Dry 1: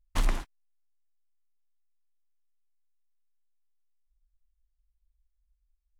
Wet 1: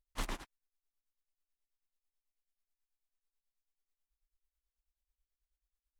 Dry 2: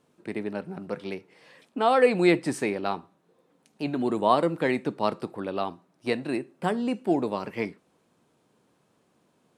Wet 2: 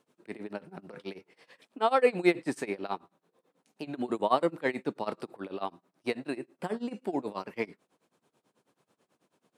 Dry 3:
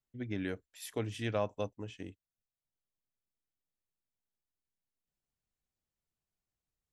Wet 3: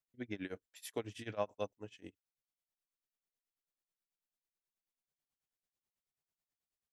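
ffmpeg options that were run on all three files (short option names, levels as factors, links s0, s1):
-filter_complex "[0:a]lowshelf=f=150:g=-11.5,tremolo=f=9.2:d=0.93,acrossover=split=2600[s0][s1];[s1]asoftclip=type=tanh:threshold=0.0237[s2];[s0][s2]amix=inputs=2:normalize=0"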